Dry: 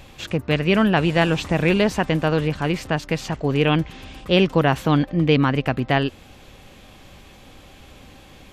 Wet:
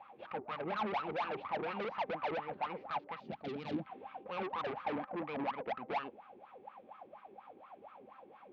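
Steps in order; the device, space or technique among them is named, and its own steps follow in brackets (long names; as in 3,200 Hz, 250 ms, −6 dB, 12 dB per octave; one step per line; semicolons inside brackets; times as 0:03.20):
wah-wah guitar rig (LFO wah 4.2 Hz 370–1,300 Hz, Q 13; tube saturation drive 44 dB, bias 0.4; loudspeaker in its box 97–3,800 Hz, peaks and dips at 210 Hz +8 dB, 400 Hz −4 dB, 830 Hz +7 dB, 2,300 Hz +5 dB)
0:03.20–0:03.87: octave-band graphic EQ 125/250/500/1,000/2,000/4,000/8,000 Hz +7/+7/−4/−11/−7/+4/+9 dB
level +8 dB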